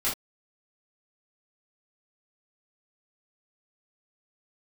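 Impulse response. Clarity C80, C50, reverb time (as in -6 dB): 18.5 dB, 7.0 dB, not exponential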